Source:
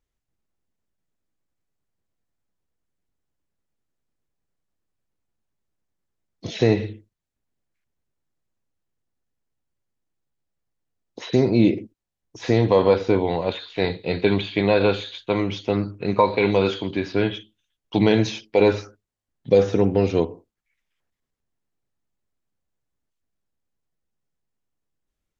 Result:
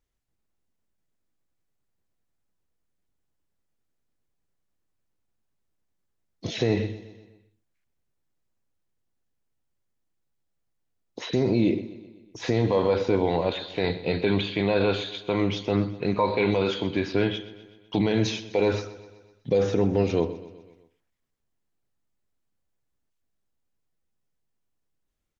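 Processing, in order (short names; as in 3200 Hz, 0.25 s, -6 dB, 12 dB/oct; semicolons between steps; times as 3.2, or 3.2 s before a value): limiter -13 dBFS, peak gain reduction 8.5 dB; on a send: feedback echo 0.126 s, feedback 56%, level -16.5 dB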